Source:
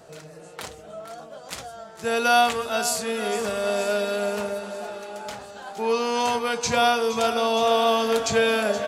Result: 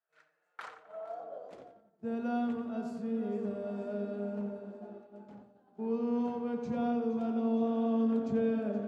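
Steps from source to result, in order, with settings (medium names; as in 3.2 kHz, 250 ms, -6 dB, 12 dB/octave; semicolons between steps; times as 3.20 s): band-pass sweep 1.6 kHz -> 230 Hz, 0.48–1.92 s; filtered feedback delay 88 ms, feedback 62%, low-pass 3.9 kHz, level -7 dB; expander -43 dBFS; trim -1.5 dB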